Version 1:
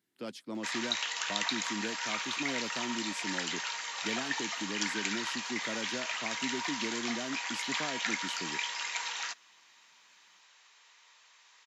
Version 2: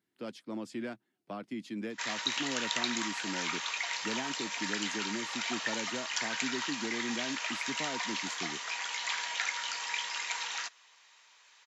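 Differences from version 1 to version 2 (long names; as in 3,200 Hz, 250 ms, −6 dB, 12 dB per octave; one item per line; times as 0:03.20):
speech: add high-shelf EQ 4,000 Hz −7.5 dB
background: entry +1.35 s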